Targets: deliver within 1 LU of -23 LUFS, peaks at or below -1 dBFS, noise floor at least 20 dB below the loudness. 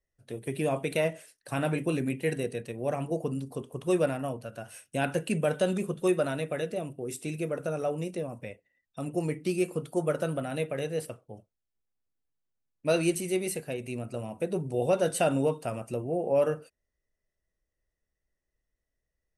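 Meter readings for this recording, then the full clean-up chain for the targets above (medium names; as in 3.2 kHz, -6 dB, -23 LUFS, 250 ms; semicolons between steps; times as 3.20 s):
loudness -30.5 LUFS; peak level -14.0 dBFS; loudness target -23.0 LUFS
-> trim +7.5 dB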